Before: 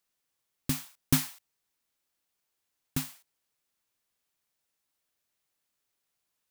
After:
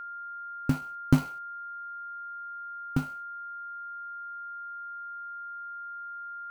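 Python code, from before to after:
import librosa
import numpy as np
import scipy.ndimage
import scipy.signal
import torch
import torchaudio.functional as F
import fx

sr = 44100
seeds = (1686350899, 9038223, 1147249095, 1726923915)

y = scipy.signal.medfilt(x, 25)
y = y + 10.0 ** (-43.0 / 20.0) * np.sin(2.0 * np.pi * 1400.0 * np.arange(len(y)) / sr)
y = y * librosa.db_to_amplitude(6.0)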